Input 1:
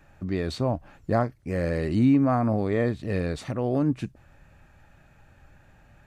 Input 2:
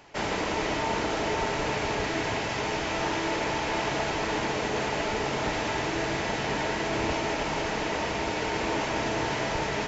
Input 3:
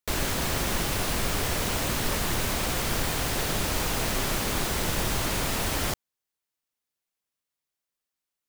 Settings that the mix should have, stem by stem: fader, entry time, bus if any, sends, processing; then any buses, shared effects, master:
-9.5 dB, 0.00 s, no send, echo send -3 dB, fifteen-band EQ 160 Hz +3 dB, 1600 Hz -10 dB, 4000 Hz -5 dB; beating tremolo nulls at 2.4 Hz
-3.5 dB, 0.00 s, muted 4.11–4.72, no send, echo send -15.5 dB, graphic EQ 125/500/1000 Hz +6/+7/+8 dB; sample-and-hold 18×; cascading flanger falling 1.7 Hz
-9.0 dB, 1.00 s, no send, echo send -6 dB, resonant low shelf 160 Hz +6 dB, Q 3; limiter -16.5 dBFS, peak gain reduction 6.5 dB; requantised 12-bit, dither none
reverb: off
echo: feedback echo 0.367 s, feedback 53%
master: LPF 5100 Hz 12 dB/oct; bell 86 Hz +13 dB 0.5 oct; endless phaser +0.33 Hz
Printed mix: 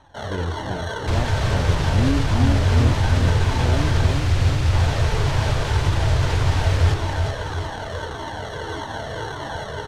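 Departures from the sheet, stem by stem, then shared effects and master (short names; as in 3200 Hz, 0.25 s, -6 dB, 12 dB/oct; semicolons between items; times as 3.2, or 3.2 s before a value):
stem 1 -9.5 dB -> -3.5 dB; stem 3 -9.0 dB -> +1.5 dB; master: missing endless phaser +0.33 Hz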